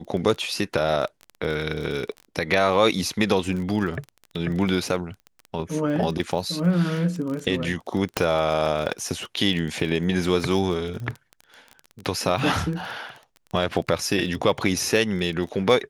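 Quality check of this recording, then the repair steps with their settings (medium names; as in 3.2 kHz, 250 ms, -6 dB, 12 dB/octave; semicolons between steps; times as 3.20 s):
crackle 21 per s -29 dBFS
8.17 s: pop -5 dBFS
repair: de-click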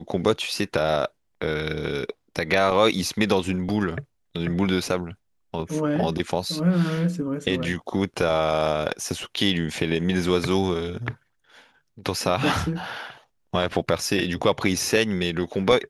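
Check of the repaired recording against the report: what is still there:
nothing left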